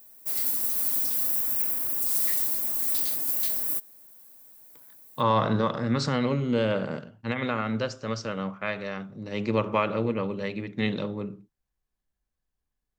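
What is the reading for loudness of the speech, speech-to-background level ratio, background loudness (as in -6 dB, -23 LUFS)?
-28.5 LUFS, -5.0 dB, -23.5 LUFS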